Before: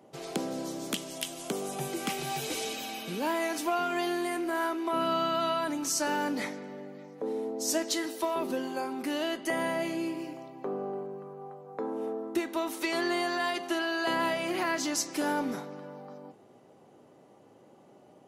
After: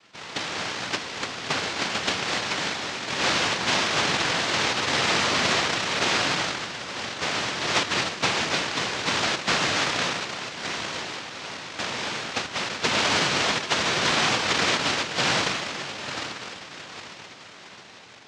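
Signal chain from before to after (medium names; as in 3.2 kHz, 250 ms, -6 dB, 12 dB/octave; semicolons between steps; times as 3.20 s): square wave that keeps the level; level rider gain up to 6 dB; echo that smears into a reverb 920 ms, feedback 44%, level -11 dB; 10.21–12.70 s: compression 4:1, threshold -23 dBFS, peak gain reduction 7 dB; noise-vocoded speech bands 1; distance through air 160 m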